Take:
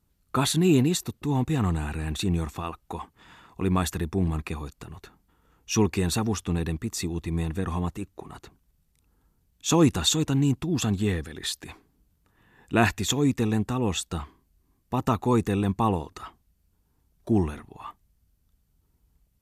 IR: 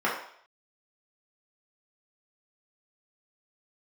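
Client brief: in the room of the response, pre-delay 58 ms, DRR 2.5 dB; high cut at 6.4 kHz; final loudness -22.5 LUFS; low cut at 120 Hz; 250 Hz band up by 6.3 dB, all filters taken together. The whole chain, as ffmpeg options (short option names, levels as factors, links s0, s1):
-filter_complex "[0:a]highpass=120,lowpass=6400,equalizer=f=250:t=o:g=8.5,asplit=2[s0][s1];[1:a]atrim=start_sample=2205,adelay=58[s2];[s1][s2]afir=irnorm=-1:irlink=0,volume=0.15[s3];[s0][s3]amix=inputs=2:normalize=0,volume=0.841"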